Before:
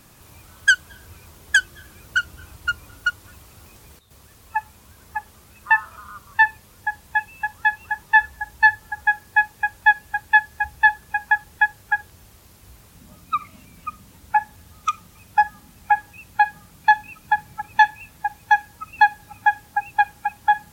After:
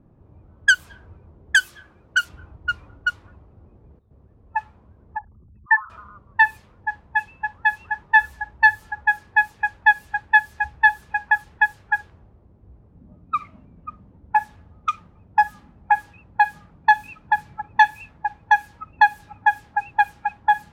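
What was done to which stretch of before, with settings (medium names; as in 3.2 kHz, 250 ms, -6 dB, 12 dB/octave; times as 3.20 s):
1.57–2.29 s: tilt EQ +2 dB/octave
5.17–5.90 s: resonances exaggerated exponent 3
whole clip: level-controlled noise filter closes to 460 Hz, open at -15.5 dBFS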